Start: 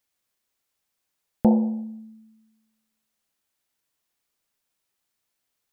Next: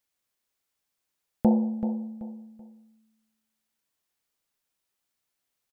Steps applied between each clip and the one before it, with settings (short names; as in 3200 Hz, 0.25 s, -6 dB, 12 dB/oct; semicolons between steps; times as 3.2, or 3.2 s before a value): feedback echo 0.382 s, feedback 29%, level -10.5 dB; gain -3 dB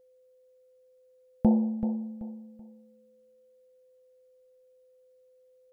low shelf 150 Hz +10 dB; whine 510 Hz -55 dBFS; gain -4 dB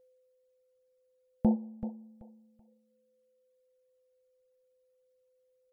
reverb removal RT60 1.7 s; gain -3.5 dB